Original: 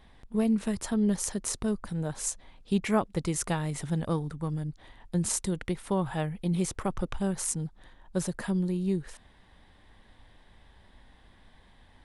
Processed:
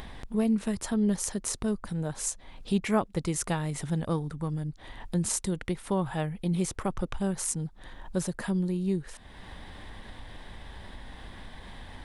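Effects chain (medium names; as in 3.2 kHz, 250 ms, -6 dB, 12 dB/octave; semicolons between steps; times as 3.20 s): upward compressor, threshold -30 dBFS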